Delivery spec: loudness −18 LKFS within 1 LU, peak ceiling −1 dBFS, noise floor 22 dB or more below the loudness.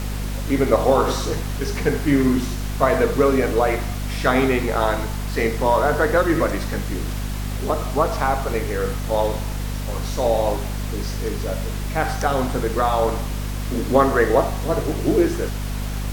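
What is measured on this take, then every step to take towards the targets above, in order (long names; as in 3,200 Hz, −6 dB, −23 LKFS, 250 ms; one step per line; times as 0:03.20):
mains hum 50 Hz; hum harmonics up to 250 Hz; level of the hum −24 dBFS; background noise floor −26 dBFS; target noise floor −44 dBFS; integrated loudness −21.5 LKFS; sample peak −2.0 dBFS; target loudness −18.0 LKFS
→ mains-hum notches 50/100/150/200/250 Hz
noise reduction from a noise print 18 dB
level +3.5 dB
brickwall limiter −1 dBFS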